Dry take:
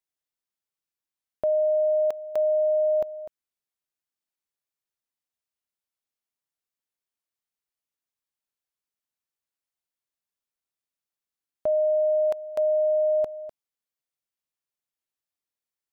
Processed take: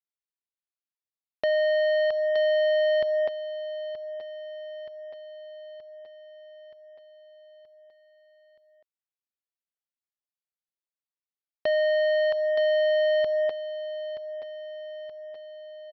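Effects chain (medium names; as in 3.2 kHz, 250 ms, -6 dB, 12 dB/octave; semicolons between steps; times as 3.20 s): high-pass 290 Hz 6 dB/octave; compression 6:1, threshold -31 dBFS, peak gain reduction 8.5 dB; waveshaping leveller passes 5; on a send: feedback delay 925 ms, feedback 59%, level -13 dB; on the sum: resampled via 11.025 kHz; trim -1 dB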